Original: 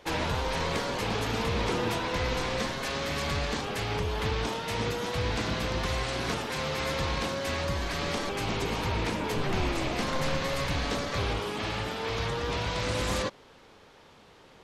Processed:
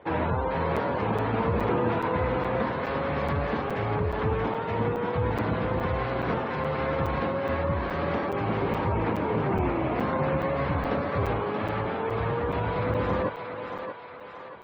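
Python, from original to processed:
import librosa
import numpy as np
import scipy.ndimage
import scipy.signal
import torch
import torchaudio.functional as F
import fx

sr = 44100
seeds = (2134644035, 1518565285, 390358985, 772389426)

y = scipy.signal.sosfilt(scipy.signal.butter(4, 69.0, 'highpass', fs=sr, output='sos'), x)
y = fx.spec_gate(y, sr, threshold_db=-20, keep='strong')
y = scipy.signal.sosfilt(scipy.signal.butter(2, 1500.0, 'lowpass', fs=sr, output='sos'), y)
y = fx.echo_thinned(y, sr, ms=631, feedback_pct=54, hz=510.0, wet_db=-5)
y = fx.buffer_crackle(y, sr, first_s=0.76, period_s=0.42, block=256, kind='zero')
y = y * 10.0 ** (4.5 / 20.0)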